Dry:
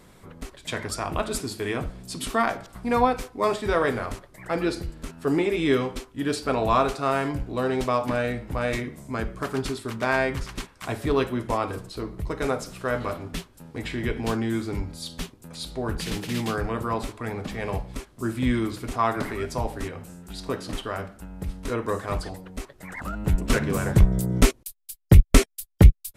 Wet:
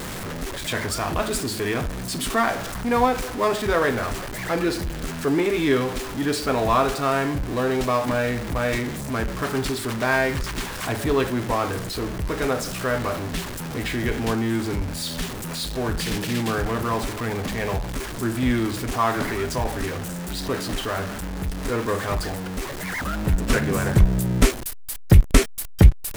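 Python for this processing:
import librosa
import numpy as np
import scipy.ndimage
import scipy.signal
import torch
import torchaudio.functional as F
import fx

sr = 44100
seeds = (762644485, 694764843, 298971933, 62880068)

y = x + 0.5 * 10.0 ** (-27.0 / 20.0) * np.sign(x)
y = fx.peak_eq(y, sr, hz=1700.0, db=3.0, octaves=0.33)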